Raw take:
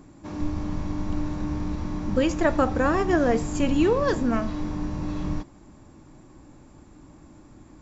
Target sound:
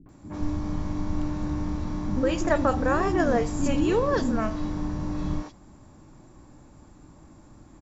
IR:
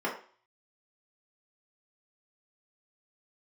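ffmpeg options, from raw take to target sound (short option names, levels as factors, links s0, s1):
-filter_complex "[0:a]acrossover=split=320|2500[s0][s1][s2];[s1]adelay=60[s3];[s2]adelay=90[s4];[s0][s3][s4]amix=inputs=3:normalize=0"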